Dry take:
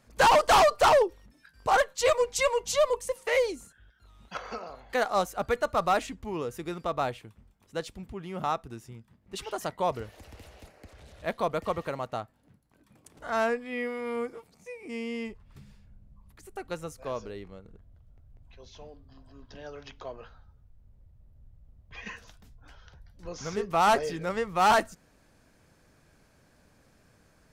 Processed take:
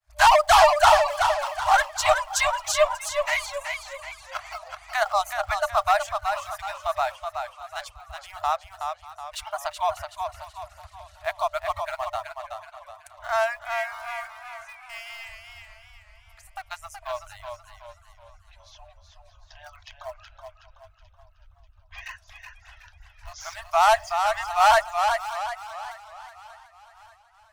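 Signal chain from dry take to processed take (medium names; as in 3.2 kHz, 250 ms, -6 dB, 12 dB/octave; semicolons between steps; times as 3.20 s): on a send: two-band feedback delay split 730 Hz, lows 118 ms, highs 588 ms, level -14.5 dB; on the sum: expander -53 dBFS; in parallel at -9 dB: small samples zeroed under -33.5 dBFS; on the sum: reverb removal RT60 1.4 s; FFT band-reject 100–600 Hz; modulated delay 374 ms, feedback 41%, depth 59 cents, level -6 dB; trim +2.5 dB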